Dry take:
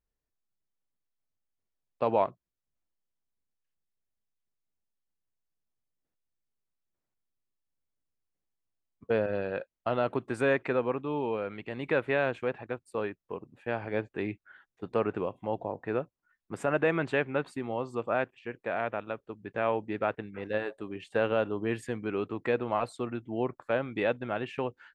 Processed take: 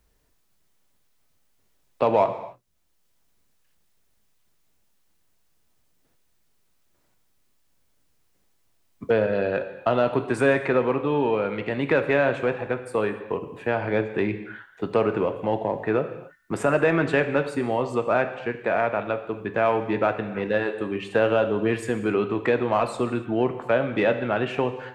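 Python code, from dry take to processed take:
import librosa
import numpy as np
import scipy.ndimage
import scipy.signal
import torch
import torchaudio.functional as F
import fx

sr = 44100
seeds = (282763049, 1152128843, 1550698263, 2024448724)

p1 = 10.0 ** (-29.0 / 20.0) * np.tanh(x / 10.0 ** (-29.0 / 20.0))
p2 = x + (p1 * librosa.db_to_amplitude(-9.0))
p3 = fx.rev_gated(p2, sr, seeds[0], gate_ms=310, shape='falling', drr_db=7.5)
p4 = fx.band_squash(p3, sr, depth_pct=40)
y = p4 * librosa.db_to_amplitude(5.5)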